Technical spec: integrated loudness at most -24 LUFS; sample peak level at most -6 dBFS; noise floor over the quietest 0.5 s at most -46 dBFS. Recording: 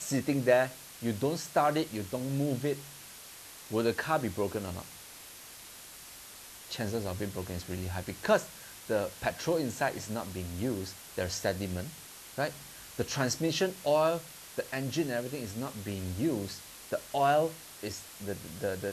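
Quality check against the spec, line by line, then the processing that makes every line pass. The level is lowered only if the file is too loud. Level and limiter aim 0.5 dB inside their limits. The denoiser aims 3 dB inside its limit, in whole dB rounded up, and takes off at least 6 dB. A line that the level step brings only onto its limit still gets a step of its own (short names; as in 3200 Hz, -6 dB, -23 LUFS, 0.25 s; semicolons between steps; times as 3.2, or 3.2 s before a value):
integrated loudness -32.5 LUFS: OK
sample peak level -12.0 dBFS: OK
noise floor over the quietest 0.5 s -49 dBFS: OK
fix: none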